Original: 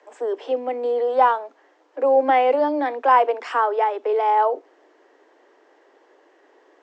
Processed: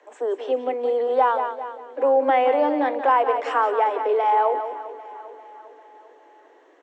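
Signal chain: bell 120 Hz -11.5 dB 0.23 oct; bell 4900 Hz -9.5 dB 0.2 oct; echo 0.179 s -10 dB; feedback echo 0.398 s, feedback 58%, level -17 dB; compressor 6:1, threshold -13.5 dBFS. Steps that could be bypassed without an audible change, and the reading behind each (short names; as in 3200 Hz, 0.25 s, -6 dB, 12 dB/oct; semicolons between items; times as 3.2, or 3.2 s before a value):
bell 120 Hz: input band starts at 230 Hz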